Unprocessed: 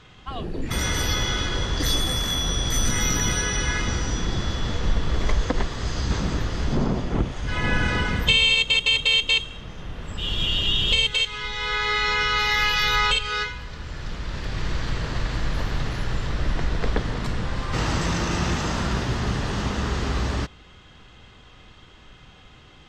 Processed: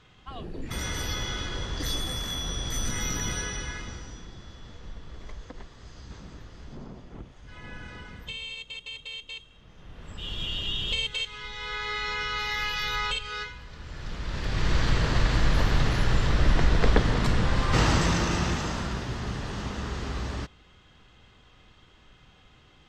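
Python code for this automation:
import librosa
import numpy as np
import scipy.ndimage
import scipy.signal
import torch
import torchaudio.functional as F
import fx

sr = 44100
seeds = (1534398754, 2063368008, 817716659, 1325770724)

y = fx.gain(x, sr, db=fx.line((3.42, -7.5), (4.34, -19.5), (9.44, -19.5), (10.08, -8.5), (13.66, -8.5), (14.78, 3.0), (17.77, 3.0), (18.99, -7.5)))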